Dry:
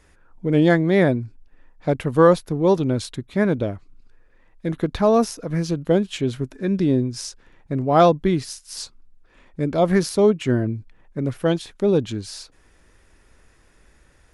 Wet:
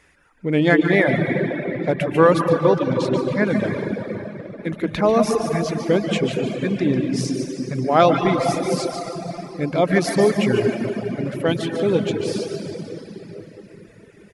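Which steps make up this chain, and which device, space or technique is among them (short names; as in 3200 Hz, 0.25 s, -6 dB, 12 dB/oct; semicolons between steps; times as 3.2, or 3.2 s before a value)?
PA in a hall (HPF 110 Hz 6 dB/oct; bell 2200 Hz +7.5 dB 0.92 oct; echo 0.146 s -8 dB; reverb RT60 4.2 s, pre-delay 0.107 s, DRR 0.5 dB); reverb removal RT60 1.1 s; 2.5–3.47 air absorption 75 m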